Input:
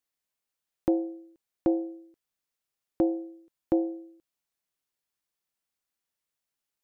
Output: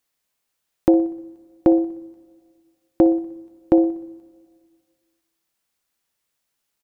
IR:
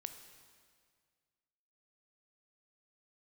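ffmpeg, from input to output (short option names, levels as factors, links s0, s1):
-filter_complex "[0:a]aecho=1:1:61|122|183|244|305:0.119|0.0689|0.04|0.0232|0.0134,asplit=2[s0][s1];[1:a]atrim=start_sample=2205[s2];[s1][s2]afir=irnorm=-1:irlink=0,volume=0.376[s3];[s0][s3]amix=inputs=2:normalize=0,volume=2.51"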